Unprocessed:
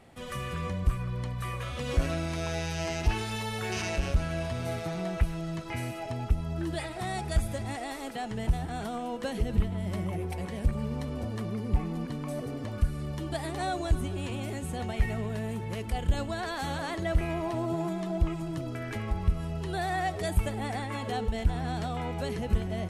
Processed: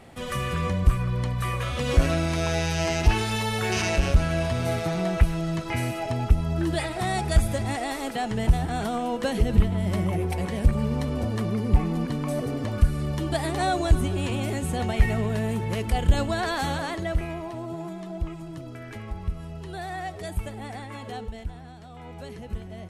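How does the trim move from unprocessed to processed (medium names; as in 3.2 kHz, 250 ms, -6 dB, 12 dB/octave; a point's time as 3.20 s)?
16.56 s +7 dB
17.52 s -3.5 dB
21.17 s -3.5 dB
21.80 s -13.5 dB
22.14 s -6.5 dB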